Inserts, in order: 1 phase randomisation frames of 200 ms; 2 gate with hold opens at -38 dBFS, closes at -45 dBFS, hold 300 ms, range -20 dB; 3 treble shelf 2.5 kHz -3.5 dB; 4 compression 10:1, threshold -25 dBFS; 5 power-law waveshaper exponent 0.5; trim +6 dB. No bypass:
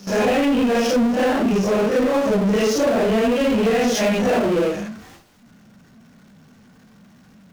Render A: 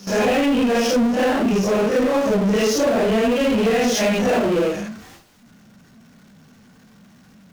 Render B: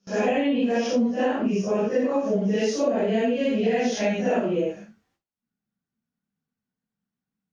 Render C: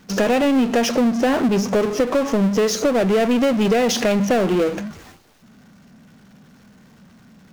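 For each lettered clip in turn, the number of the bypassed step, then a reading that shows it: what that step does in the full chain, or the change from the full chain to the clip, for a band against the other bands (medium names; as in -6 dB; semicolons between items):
3, 8 kHz band +2.0 dB; 5, crest factor change +5.0 dB; 1, 8 kHz band +2.5 dB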